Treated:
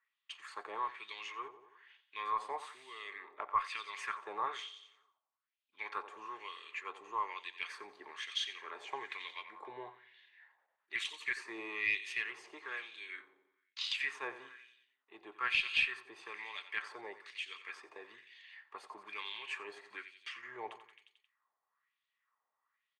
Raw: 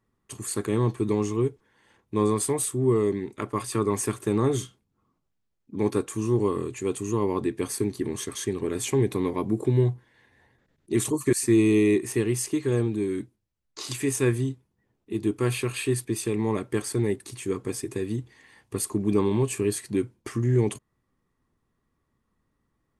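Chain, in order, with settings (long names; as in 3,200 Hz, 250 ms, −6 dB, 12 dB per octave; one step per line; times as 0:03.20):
three-way crossover with the lows and the highs turned down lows −22 dB, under 520 Hz, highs −21 dB, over 4,500 Hz
on a send: repeating echo 89 ms, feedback 58%, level −13 dB
on the sum: auto-filter band-pass sine 1.1 Hz 740–3,300 Hz
tilt shelving filter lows −6.5 dB, about 1,300 Hz
harmonic generator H 2 −24 dB, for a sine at −21 dBFS
level +3 dB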